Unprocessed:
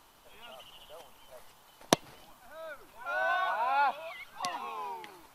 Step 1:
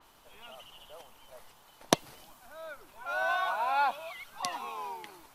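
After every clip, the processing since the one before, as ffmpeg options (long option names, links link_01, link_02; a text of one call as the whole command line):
ffmpeg -i in.wav -af "adynamicequalizer=threshold=0.00355:dfrequency=4400:dqfactor=0.7:tfrequency=4400:tqfactor=0.7:attack=5:release=100:ratio=0.375:range=3:mode=boostabove:tftype=highshelf" out.wav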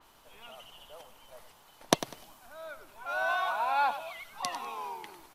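ffmpeg -i in.wav -af "aecho=1:1:99|198|297:0.224|0.0582|0.0151" out.wav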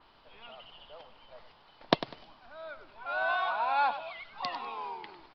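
ffmpeg -i in.wav -af "aresample=11025,aresample=44100" out.wav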